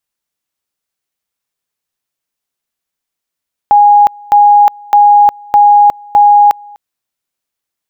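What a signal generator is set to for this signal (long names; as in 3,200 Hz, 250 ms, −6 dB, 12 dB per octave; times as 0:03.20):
tone at two levels in turn 824 Hz −2 dBFS, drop 27.5 dB, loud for 0.36 s, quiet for 0.25 s, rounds 5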